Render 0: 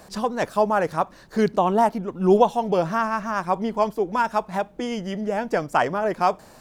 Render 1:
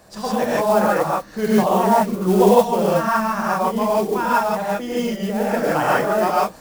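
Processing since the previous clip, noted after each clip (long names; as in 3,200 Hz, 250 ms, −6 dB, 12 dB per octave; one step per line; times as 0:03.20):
reverb whose tail is shaped and stops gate 190 ms rising, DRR −7.5 dB
noise that follows the level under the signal 21 dB
level −4 dB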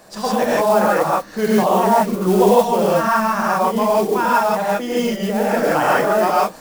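parametric band 64 Hz −14.5 dB 1.5 octaves
in parallel at +0.5 dB: brickwall limiter −13.5 dBFS, peak gain reduction 11.5 dB
on the sum: level −2 dB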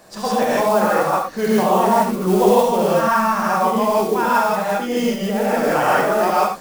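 reverb whose tail is shaped and stops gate 100 ms rising, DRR 4.5 dB
level −1.5 dB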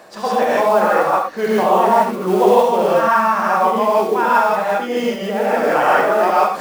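low-shelf EQ 75 Hz −11.5 dB
reversed playback
upward compression, threshold −23 dBFS
reversed playback
bass and treble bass −8 dB, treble −9 dB
level +3 dB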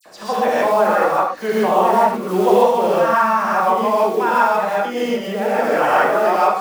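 all-pass dispersion lows, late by 58 ms, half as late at 2,900 Hz
level −1 dB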